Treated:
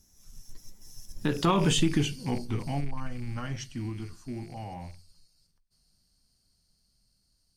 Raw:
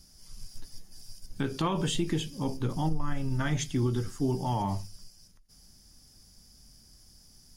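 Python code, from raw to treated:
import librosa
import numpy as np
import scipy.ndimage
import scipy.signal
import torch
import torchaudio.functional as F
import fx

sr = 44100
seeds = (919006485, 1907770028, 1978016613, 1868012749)

y = fx.rattle_buzz(x, sr, strikes_db=-34.0, level_db=-36.0)
y = fx.doppler_pass(y, sr, speed_mps=41, closest_m=19.0, pass_at_s=1.65)
y = y * 10.0 ** (5.5 / 20.0)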